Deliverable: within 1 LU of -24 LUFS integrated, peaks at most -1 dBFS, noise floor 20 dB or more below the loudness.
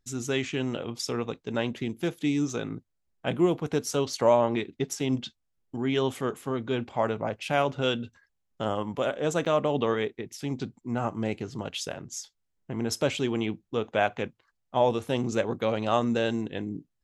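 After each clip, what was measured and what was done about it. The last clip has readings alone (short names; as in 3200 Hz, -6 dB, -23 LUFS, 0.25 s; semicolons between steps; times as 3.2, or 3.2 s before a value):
dropouts 1; longest dropout 7.7 ms; loudness -29.0 LUFS; peak -9.5 dBFS; loudness target -24.0 LUFS
-> interpolate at 9.45, 7.7 ms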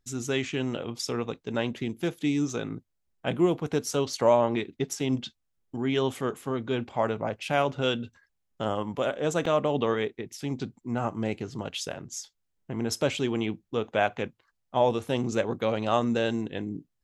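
dropouts 0; loudness -29.0 LUFS; peak -9.5 dBFS; loudness target -24.0 LUFS
-> gain +5 dB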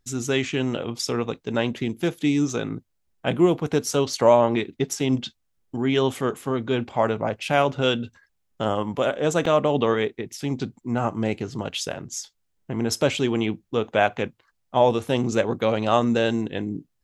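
loudness -24.0 LUFS; peak -4.5 dBFS; noise floor -72 dBFS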